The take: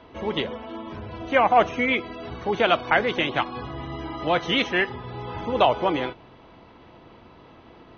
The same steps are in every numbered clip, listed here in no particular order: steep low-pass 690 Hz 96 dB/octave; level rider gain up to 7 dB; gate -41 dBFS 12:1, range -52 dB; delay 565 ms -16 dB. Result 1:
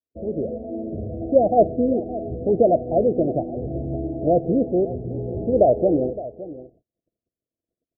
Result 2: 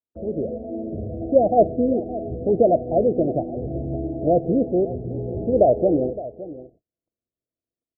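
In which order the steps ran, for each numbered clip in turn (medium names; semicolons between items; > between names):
gate > steep low-pass > level rider > delay; steep low-pass > gate > level rider > delay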